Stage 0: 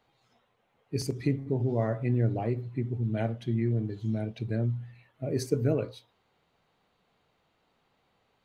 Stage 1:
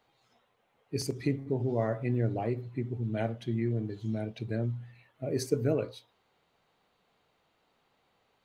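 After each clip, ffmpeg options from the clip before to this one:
-af "bass=f=250:g=-4,treble=f=4k:g=1"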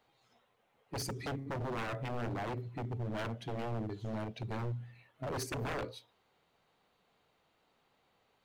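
-af "aeval=exprs='0.0299*(abs(mod(val(0)/0.0299+3,4)-2)-1)':c=same,volume=-1.5dB"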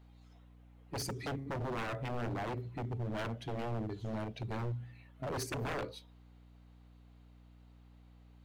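-af "aeval=exprs='val(0)+0.00141*(sin(2*PI*60*n/s)+sin(2*PI*2*60*n/s)/2+sin(2*PI*3*60*n/s)/3+sin(2*PI*4*60*n/s)/4+sin(2*PI*5*60*n/s)/5)':c=same"

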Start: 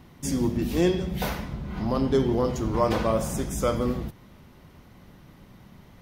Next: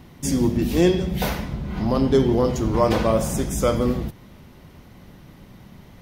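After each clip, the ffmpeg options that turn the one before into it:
-af "equalizer=f=1.2k:w=1.5:g=-2.5,volume=5dB"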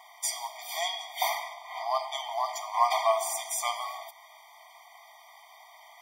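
-filter_complex "[0:a]asplit=2[a][b];[b]acompressor=threshold=-27dB:ratio=16,volume=-3dB[c];[a][c]amix=inputs=2:normalize=0,afftfilt=real='re*eq(mod(floor(b*sr/1024/620),2),1)':imag='im*eq(mod(floor(b*sr/1024/620),2),1)':win_size=1024:overlap=0.75"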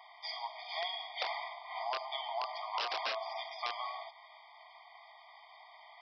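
-af "aresample=11025,aeval=exprs='(mod(8.91*val(0)+1,2)-1)/8.91':c=same,aresample=44100,acompressor=threshold=-30dB:ratio=6,highpass=f=450:w=0.5412,highpass=f=450:w=1.3066,volume=-3dB"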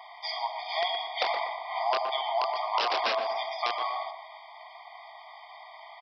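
-filter_complex "[0:a]lowshelf=f=460:g=11,asplit=2[a][b];[b]adelay=121,lowpass=f=1.4k:p=1,volume=-6dB,asplit=2[c][d];[d]adelay=121,lowpass=f=1.4k:p=1,volume=0.32,asplit=2[e][f];[f]adelay=121,lowpass=f=1.4k:p=1,volume=0.32,asplit=2[g][h];[h]adelay=121,lowpass=f=1.4k:p=1,volume=0.32[i];[c][e][g][i]amix=inputs=4:normalize=0[j];[a][j]amix=inputs=2:normalize=0,volume=6.5dB"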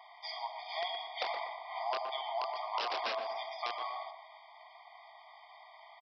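-af "aresample=16000,aresample=44100,volume=-8dB"

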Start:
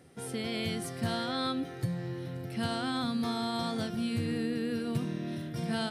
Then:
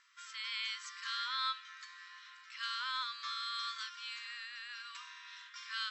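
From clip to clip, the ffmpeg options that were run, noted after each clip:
-af "afftfilt=real='re*between(b*sr/4096,960,7900)':imag='im*between(b*sr/4096,960,7900)':win_size=4096:overlap=0.75"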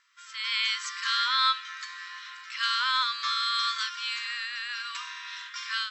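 -af "dynaudnorm=f=260:g=3:m=12dB"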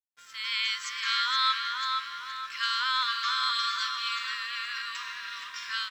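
-filter_complex "[0:a]aeval=exprs='sgn(val(0))*max(abs(val(0))-0.00141,0)':c=same,asplit=2[a][b];[b]adelay=470,lowpass=f=3.2k:p=1,volume=-3dB,asplit=2[c][d];[d]adelay=470,lowpass=f=3.2k:p=1,volume=0.49,asplit=2[e][f];[f]adelay=470,lowpass=f=3.2k:p=1,volume=0.49,asplit=2[g][h];[h]adelay=470,lowpass=f=3.2k:p=1,volume=0.49,asplit=2[i][j];[j]adelay=470,lowpass=f=3.2k:p=1,volume=0.49,asplit=2[k][l];[l]adelay=470,lowpass=f=3.2k:p=1,volume=0.49[m];[a][c][e][g][i][k][m]amix=inputs=7:normalize=0,volume=-1.5dB"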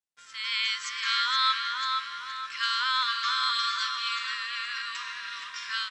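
-af "aresample=22050,aresample=44100,volume=1dB"

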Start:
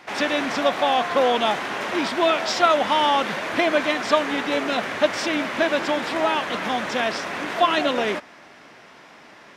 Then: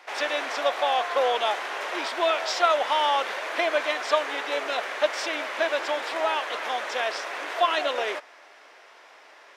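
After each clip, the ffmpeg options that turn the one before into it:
-af "highpass=f=420:w=0.5412,highpass=f=420:w=1.3066,volume=-3.5dB"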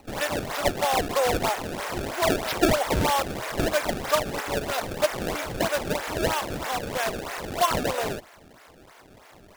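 -af "acrusher=samples=25:mix=1:aa=0.000001:lfo=1:lforange=40:lforate=3.1"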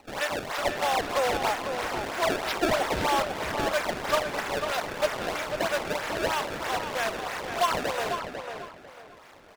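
-filter_complex "[0:a]asplit=2[a][b];[b]highpass=f=720:p=1,volume=9dB,asoftclip=type=tanh:threshold=-9dB[c];[a][c]amix=inputs=2:normalize=0,lowpass=f=4.9k:p=1,volume=-6dB,asplit=2[d][e];[e]adelay=496,lowpass=f=3.8k:p=1,volume=-7dB,asplit=2[f][g];[g]adelay=496,lowpass=f=3.8k:p=1,volume=0.27,asplit=2[h][i];[i]adelay=496,lowpass=f=3.8k:p=1,volume=0.27[j];[d][f][h][j]amix=inputs=4:normalize=0,volume=-4dB"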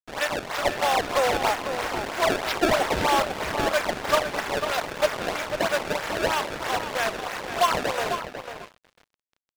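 -af "aeval=exprs='sgn(val(0))*max(abs(val(0))-0.00944,0)':c=same,volume=4.5dB"

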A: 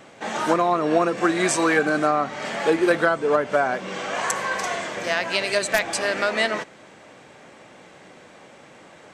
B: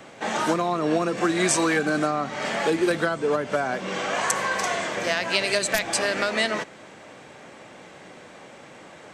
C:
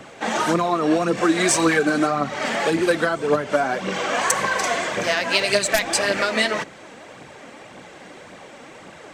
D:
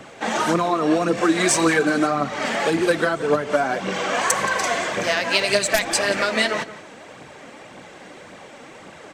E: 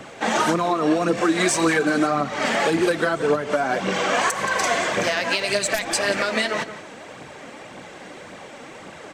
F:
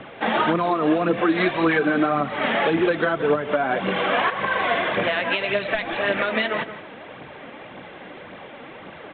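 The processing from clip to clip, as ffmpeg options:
-filter_complex "[0:a]acrossover=split=270|3000[a][b][c];[b]acompressor=threshold=-24dB:ratio=6[d];[a][d][c]amix=inputs=3:normalize=0,volume=2dB"
-af "aphaser=in_gain=1:out_gain=1:delay=4.4:decay=0.45:speed=1.8:type=triangular,volume=2.5dB"
-filter_complex "[0:a]asplit=2[a][b];[b]adelay=174.9,volume=-15dB,highshelf=f=4k:g=-3.94[c];[a][c]amix=inputs=2:normalize=0"
-af "alimiter=limit=-12dB:level=0:latency=1:release=223,volume=2dB"
-ar 8000 -c:a pcm_mulaw

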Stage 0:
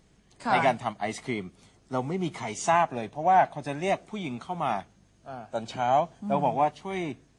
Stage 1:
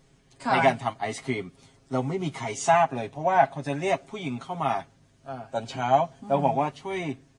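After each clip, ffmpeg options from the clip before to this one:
-af "aecho=1:1:7.4:0.75"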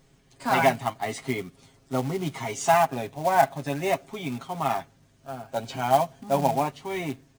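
-af "acrusher=bits=4:mode=log:mix=0:aa=0.000001"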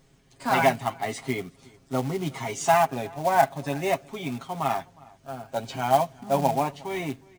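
-filter_complex "[0:a]asplit=2[a][b];[b]adelay=361.5,volume=-24dB,highshelf=f=4k:g=-8.13[c];[a][c]amix=inputs=2:normalize=0"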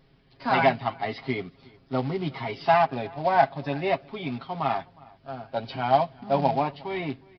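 -af "aresample=11025,aresample=44100"

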